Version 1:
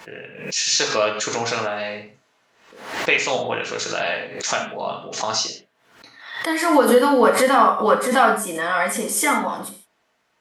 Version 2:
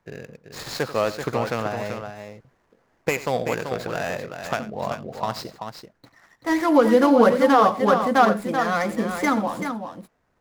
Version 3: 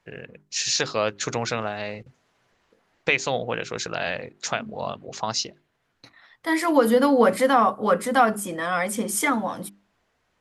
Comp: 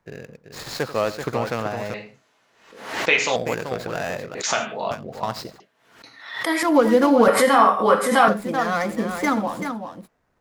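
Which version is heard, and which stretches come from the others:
2
1.94–3.36 s: from 1
4.35–4.91 s: from 1
5.60–6.63 s: from 1
7.28–8.28 s: from 1
not used: 3

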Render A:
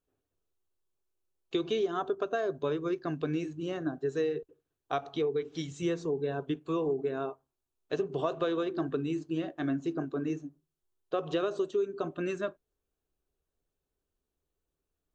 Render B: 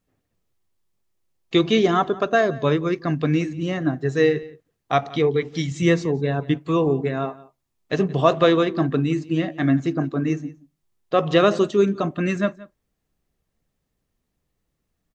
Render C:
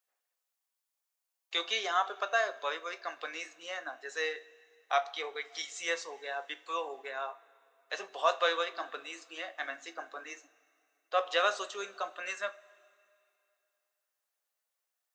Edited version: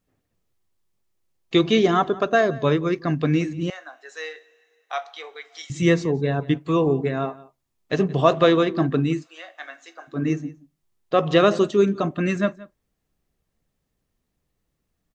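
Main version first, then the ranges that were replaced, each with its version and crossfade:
B
3.70–5.70 s: from C
9.19–10.15 s: from C, crossfade 0.16 s
not used: A

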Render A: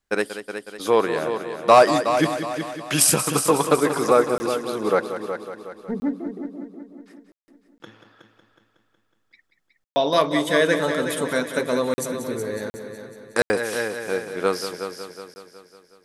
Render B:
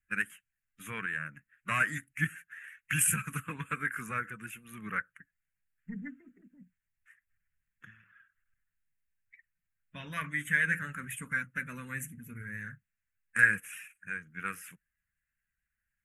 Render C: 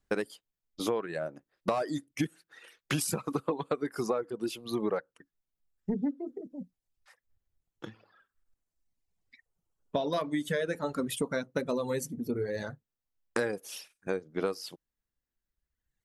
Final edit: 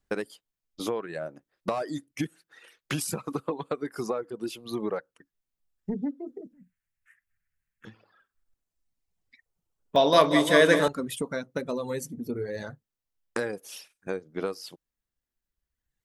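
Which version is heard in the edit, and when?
C
6.53–7.85 s: from B
9.96–10.88 s: from A

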